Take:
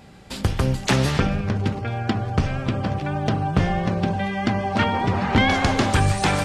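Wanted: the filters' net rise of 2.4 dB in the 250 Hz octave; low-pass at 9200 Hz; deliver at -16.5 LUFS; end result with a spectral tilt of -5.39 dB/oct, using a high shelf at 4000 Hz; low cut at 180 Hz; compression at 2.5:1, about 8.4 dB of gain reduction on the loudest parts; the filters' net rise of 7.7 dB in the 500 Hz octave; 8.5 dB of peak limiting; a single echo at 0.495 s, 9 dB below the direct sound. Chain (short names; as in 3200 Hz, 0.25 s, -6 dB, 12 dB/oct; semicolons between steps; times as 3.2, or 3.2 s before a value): HPF 180 Hz; LPF 9200 Hz; bell 250 Hz +3 dB; bell 500 Hz +9 dB; high shelf 4000 Hz -8 dB; compressor 2.5:1, threshold -26 dBFS; limiter -17.5 dBFS; echo 0.495 s -9 dB; gain +11.5 dB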